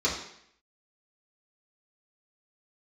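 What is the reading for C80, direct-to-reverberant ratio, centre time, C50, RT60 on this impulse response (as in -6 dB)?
8.0 dB, -8.0 dB, 35 ms, 5.0 dB, 0.70 s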